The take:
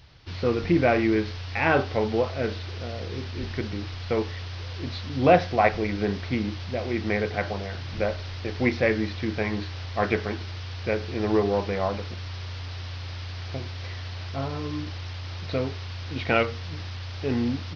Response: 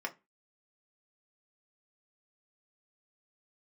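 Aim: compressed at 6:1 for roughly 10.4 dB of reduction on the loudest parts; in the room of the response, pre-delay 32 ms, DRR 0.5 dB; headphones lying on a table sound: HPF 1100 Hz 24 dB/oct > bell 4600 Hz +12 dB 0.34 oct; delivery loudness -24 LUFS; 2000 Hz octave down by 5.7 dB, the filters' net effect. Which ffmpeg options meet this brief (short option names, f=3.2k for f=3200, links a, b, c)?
-filter_complex "[0:a]equalizer=f=2k:t=o:g=-7.5,acompressor=threshold=-24dB:ratio=6,asplit=2[a][b];[1:a]atrim=start_sample=2205,adelay=32[c];[b][c]afir=irnorm=-1:irlink=0,volume=-3.5dB[d];[a][d]amix=inputs=2:normalize=0,highpass=f=1.1k:w=0.5412,highpass=f=1.1k:w=1.3066,equalizer=f=4.6k:t=o:w=0.34:g=12,volume=12.5dB"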